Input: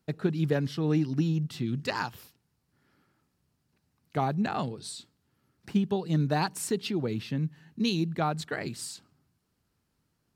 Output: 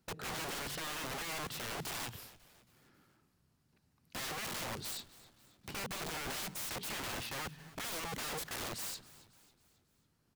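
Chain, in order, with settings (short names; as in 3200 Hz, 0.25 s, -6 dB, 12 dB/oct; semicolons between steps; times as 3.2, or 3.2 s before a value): limiter -22.5 dBFS, peak gain reduction 9 dB; wrapped overs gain 35.5 dB; frequency-shifting echo 0.273 s, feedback 49%, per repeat -120 Hz, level -19 dB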